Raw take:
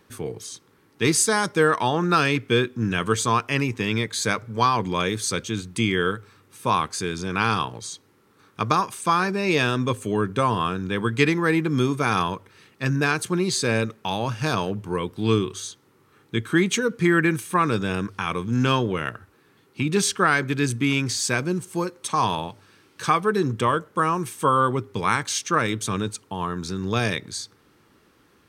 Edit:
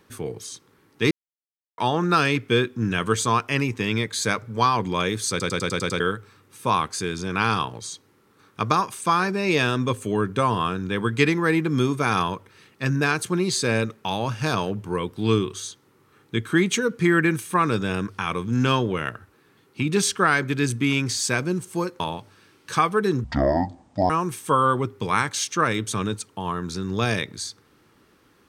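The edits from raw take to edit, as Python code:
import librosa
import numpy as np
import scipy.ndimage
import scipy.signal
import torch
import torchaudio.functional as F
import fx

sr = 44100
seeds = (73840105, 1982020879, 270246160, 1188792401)

y = fx.edit(x, sr, fx.silence(start_s=1.11, length_s=0.67),
    fx.stutter_over(start_s=5.3, slice_s=0.1, count=7),
    fx.cut(start_s=22.0, length_s=0.31),
    fx.speed_span(start_s=23.55, length_s=0.49, speed=0.57), tone=tone)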